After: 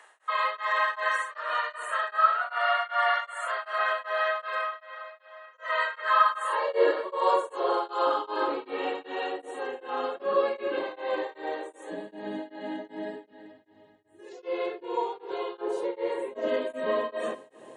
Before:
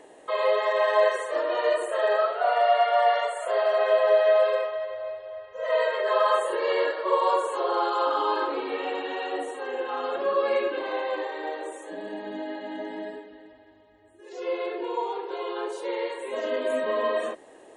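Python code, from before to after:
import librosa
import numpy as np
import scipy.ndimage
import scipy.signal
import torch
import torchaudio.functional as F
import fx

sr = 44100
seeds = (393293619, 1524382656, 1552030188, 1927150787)

p1 = fx.filter_sweep_highpass(x, sr, from_hz=1300.0, to_hz=140.0, start_s=6.46, end_s=7.15, q=3.3)
p2 = fx.tilt_shelf(p1, sr, db=5.5, hz=1400.0, at=(15.61, 16.48))
p3 = p2 + fx.echo_feedback(p2, sr, ms=314, feedback_pct=55, wet_db=-21.5, dry=0)
y = p3 * np.abs(np.cos(np.pi * 2.6 * np.arange(len(p3)) / sr))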